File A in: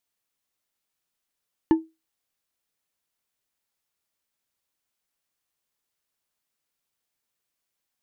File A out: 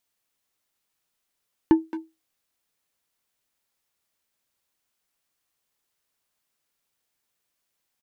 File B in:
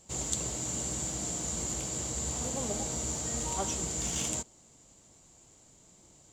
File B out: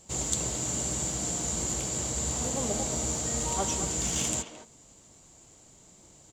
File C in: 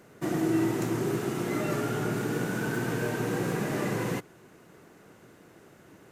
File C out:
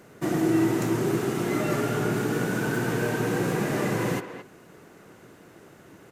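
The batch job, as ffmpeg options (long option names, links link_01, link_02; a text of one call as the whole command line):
ffmpeg -i in.wav -filter_complex "[0:a]acontrast=78,asplit=2[link_01][link_02];[link_02]adelay=220,highpass=300,lowpass=3400,asoftclip=type=hard:threshold=-15.5dB,volume=-9dB[link_03];[link_01][link_03]amix=inputs=2:normalize=0,volume=-3.5dB" out.wav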